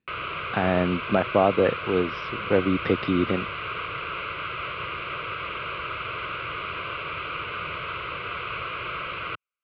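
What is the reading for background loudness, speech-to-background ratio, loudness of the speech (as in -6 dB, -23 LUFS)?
-31.5 LUFS, 7.0 dB, -24.5 LUFS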